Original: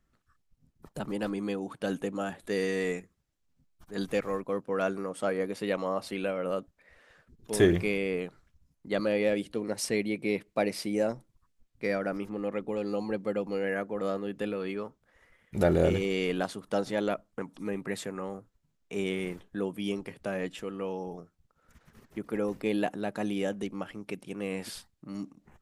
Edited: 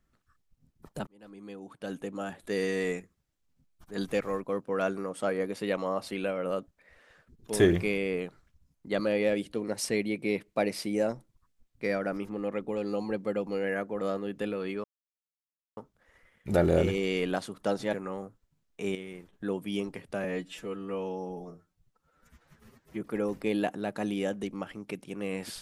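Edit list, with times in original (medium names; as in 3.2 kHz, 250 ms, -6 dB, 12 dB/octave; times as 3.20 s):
1.07–2.65 s: fade in linear
14.84 s: insert silence 0.93 s
17.00–18.05 s: delete
19.07–19.45 s: gain -9.5 dB
20.36–22.21 s: stretch 1.5×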